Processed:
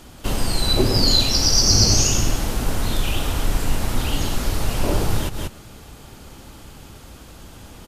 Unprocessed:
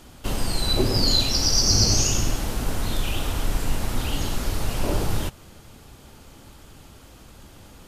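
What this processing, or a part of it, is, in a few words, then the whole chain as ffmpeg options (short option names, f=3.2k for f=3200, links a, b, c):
ducked delay: -filter_complex "[0:a]asplit=3[a][b][c];[b]adelay=184,volume=-3dB[d];[c]apad=whole_len=355350[e];[d][e]sidechaincompress=threshold=-39dB:ratio=8:attack=16:release=107[f];[a][f]amix=inputs=2:normalize=0,volume=3.5dB"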